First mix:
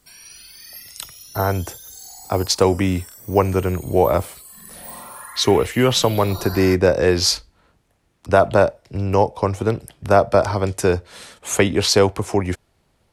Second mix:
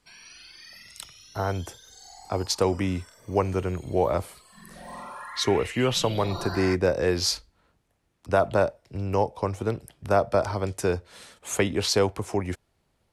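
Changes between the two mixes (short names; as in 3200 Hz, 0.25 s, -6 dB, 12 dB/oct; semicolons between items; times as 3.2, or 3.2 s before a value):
speech -7.5 dB; background: add LPF 4000 Hz 12 dB/oct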